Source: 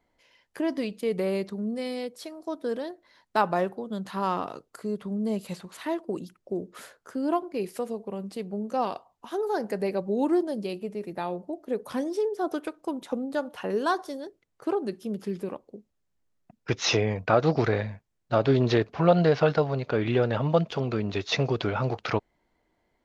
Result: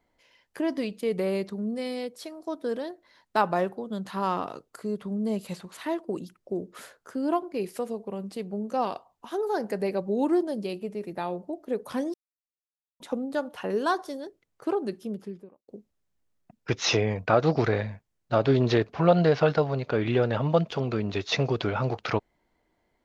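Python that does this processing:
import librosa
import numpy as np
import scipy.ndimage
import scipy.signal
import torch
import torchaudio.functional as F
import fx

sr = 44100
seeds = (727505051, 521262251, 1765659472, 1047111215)

y = fx.studio_fade_out(x, sr, start_s=14.9, length_s=0.78)
y = fx.edit(y, sr, fx.silence(start_s=12.14, length_s=0.86), tone=tone)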